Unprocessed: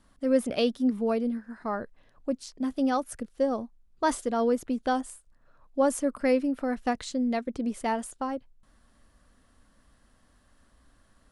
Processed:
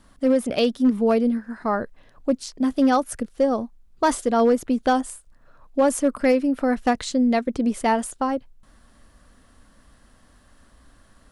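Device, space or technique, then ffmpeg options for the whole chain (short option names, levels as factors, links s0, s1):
limiter into clipper: -af "alimiter=limit=0.133:level=0:latency=1:release=308,asoftclip=type=hard:threshold=0.106,volume=2.51"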